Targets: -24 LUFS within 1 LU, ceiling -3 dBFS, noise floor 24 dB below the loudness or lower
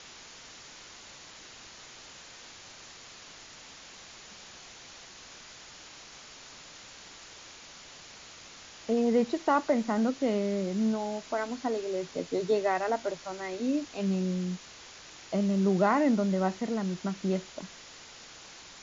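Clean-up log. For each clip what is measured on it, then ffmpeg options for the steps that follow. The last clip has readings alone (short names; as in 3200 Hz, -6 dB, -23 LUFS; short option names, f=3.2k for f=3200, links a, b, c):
noise floor -50 dBFS; noise floor target -54 dBFS; loudness -29.5 LUFS; peak -12.5 dBFS; loudness target -24.0 LUFS
-> -af "afftdn=nr=6:nf=-50"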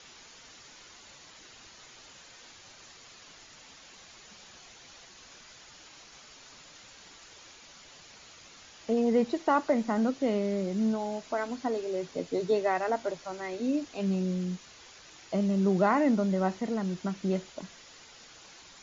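noise floor -53 dBFS; noise floor target -54 dBFS
-> -af "afftdn=nr=6:nf=-53"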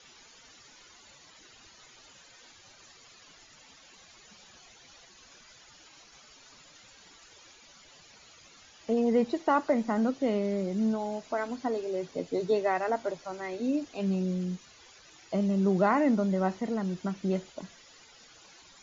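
noise floor -56 dBFS; loudness -29.5 LUFS; peak -12.5 dBFS; loudness target -24.0 LUFS
-> -af "volume=5.5dB"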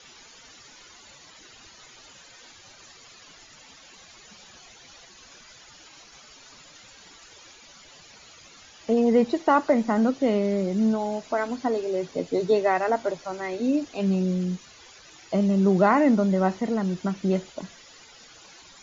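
loudness -24.0 LUFS; peak -7.0 dBFS; noise floor -50 dBFS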